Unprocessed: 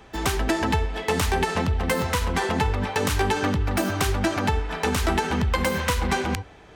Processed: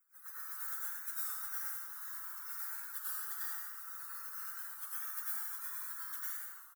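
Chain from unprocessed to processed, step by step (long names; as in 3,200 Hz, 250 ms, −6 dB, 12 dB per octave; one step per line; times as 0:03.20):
each half-wave held at its own peak
elliptic high-pass filter 2,600 Hz, stop band 80 dB
gate on every frequency bin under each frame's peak −30 dB weak
high-shelf EQ 6,200 Hz +12 dB
on a send: repeating echo 87 ms, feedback 43%, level −6.5 dB
on the sum: dense smooth reverb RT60 1.5 s, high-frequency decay 0.6×, pre-delay 85 ms, DRR −8.5 dB
wow of a warped record 33 1/3 rpm, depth 100 cents
level +4.5 dB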